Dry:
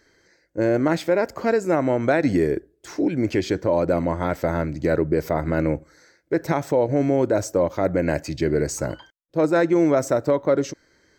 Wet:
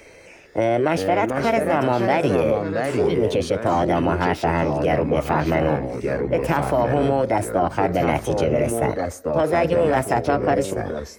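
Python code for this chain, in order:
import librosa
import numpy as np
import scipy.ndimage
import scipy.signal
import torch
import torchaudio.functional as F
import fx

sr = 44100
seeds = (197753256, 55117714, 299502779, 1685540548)

p1 = fx.formant_shift(x, sr, semitones=5)
p2 = fx.over_compress(p1, sr, threshold_db=-23.0, ratio=-1.0)
p3 = p1 + (p2 * librosa.db_to_amplitude(-2.5))
p4 = fx.echo_pitch(p3, sr, ms=280, semitones=-3, count=2, db_per_echo=-6.0)
p5 = fx.peak_eq(p4, sr, hz=7400.0, db=-7.5, octaves=0.5)
p6 = fx.band_squash(p5, sr, depth_pct=40)
y = p6 * librosa.db_to_amplitude(-3.0)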